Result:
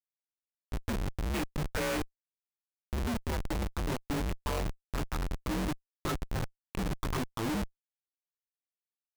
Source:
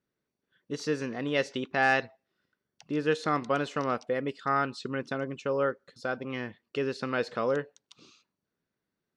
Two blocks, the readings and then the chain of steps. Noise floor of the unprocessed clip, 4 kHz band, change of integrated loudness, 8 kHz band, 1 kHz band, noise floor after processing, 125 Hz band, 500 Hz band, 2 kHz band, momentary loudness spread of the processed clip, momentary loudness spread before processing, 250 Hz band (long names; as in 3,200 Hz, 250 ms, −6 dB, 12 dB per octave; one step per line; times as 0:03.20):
below −85 dBFS, −2.0 dB, −5.0 dB, +5.0 dB, −8.0 dB, below −85 dBFS, +4.0 dB, −9.5 dB, −9.5 dB, 5 LU, 9 LU, −2.0 dB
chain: phaser swept by the level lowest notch 160 Hz, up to 1,500 Hz, full sweep at −25 dBFS
single-sideband voice off tune −230 Hz 170–3,100 Hz
double-tracking delay 20 ms −3.5 dB
comparator with hysteresis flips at −34.5 dBFS
level +3 dB